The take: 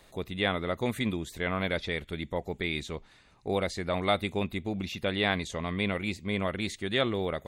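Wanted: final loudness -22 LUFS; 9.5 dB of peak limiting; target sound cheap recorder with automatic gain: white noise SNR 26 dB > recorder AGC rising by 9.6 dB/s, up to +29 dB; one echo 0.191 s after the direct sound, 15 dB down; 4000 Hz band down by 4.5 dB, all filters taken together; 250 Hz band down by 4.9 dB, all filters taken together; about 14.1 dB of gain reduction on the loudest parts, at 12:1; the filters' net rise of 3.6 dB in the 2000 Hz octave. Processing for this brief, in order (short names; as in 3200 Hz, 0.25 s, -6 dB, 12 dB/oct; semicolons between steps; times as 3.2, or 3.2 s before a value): bell 250 Hz -7 dB; bell 2000 Hz +6 dB; bell 4000 Hz -7.5 dB; compressor 12:1, threshold -35 dBFS; limiter -32.5 dBFS; echo 0.191 s -15 dB; white noise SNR 26 dB; recorder AGC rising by 9.6 dB/s, up to +29 dB; gain +22 dB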